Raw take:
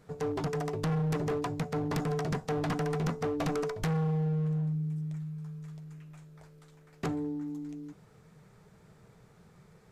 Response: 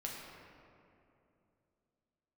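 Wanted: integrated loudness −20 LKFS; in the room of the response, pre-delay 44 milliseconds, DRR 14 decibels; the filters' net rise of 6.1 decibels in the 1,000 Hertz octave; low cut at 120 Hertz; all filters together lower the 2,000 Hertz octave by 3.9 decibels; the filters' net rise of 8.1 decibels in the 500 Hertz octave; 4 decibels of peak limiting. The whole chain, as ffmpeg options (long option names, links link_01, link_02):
-filter_complex "[0:a]highpass=120,equalizer=frequency=500:width_type=o:gain=8.5,equalizer=frequency=1000:width_type=o:gain=6.5,equalizer=frequency=2000:width_type=o:gain=-8.5,alimiter=limit=-20.5dB:level=0:latency=1,asplit=2[link_01][link_02];[1:a]atrim=start_sample=2205,adelay=44[link_03];[link_02][link_03]afir=irnorm=-1:irlink=0,volume=-14dB[link_04];[link_01][link_04]amix=inputs=2:normalize=0,volume=10dB"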